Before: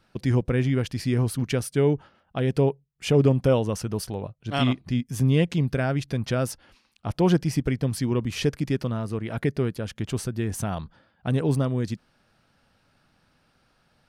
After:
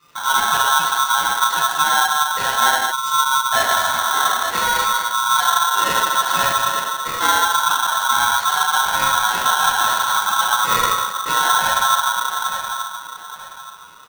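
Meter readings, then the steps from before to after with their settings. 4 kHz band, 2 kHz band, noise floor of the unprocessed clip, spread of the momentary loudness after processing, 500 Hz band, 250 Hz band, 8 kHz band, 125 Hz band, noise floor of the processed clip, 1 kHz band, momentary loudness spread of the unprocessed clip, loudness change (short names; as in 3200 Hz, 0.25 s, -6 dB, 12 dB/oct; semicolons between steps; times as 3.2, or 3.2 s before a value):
+18.0 dB, +19.0 dB, -67 dBFS, 6 LU, -5.0 dB, -14.5 dB, +19.0 dB, -19.0 dB, -37 dBFS, +23.0 dB, 11 LU, +8.5 dB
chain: feedback echo 0.875 s, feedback 29%, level -14.5 dB; shoebox room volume 930 m³, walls mixed, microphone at 8 m; vocal rider within 5 dB 0.5 s; air absorption 92 m; spectral delete 2.92–3.52, 360–4100 Hz; de-esser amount 75%; pre-emphasis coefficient 0.8; spectral gate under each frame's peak -30 dB strong; polarity switched at an audio rate 1200 Hz; gain +5.5 dB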